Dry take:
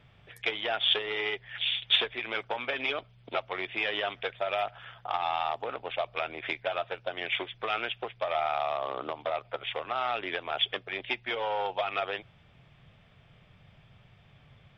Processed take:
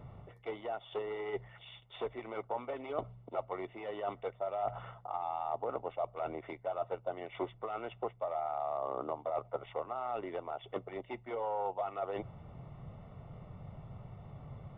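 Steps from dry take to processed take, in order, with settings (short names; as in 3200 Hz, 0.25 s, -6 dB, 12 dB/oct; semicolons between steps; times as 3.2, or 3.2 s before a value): reverse; compressor 10:1, threshold -41 dBFS, peak gain reduction 22 dB; reverse; polynomial smoothing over 65 samples; gain +9.5 dB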